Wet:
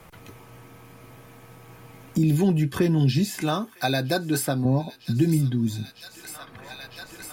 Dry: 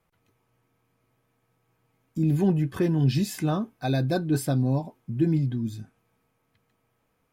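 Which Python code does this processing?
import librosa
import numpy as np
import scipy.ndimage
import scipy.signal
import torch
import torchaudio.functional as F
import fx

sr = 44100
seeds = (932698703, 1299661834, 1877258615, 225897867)

y = fx.tilt_eq(x, sr, slope=3.5, at=(3.41, 4.65))
y = fx.echo_wet_highpass(y, sr, ms=954, feedback_pct=68, hz=1500.0, wet_db=-20.0)
y = fx.band_squash(y, sr, depth_pct=70)
y = y * librosa.db_to_amplitude(3.0)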